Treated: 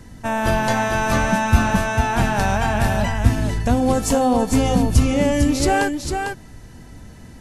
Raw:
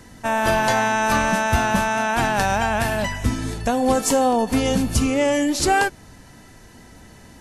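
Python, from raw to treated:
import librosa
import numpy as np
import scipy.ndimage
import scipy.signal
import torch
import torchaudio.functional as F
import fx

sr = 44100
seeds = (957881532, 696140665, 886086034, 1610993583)

p1 = fx.low_shelf(x, sr, hz=220.0, db=10.5)
p2 = p1 + fx.echo_single(p1, sr, ms=450, db=-5.5, dry=0)
y = F.gain(torch.from_numpy(p2), -2.5).numpy()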